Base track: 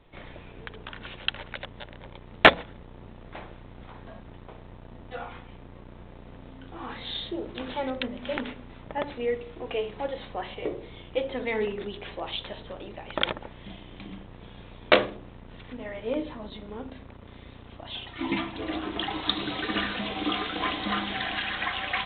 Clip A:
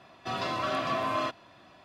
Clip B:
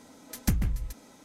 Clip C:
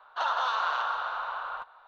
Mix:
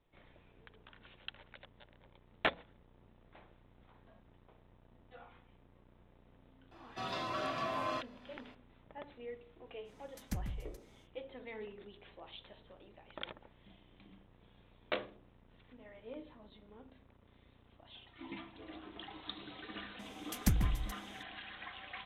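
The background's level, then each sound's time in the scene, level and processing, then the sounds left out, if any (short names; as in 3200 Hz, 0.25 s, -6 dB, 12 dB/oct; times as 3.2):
base track -18 dB
6.71 add A -7.5 dB
9.84 add B -13 dB, fades 0.05 s + high shelf 9500 Hz -6 dB
19.99 add B -4 dB
not used: C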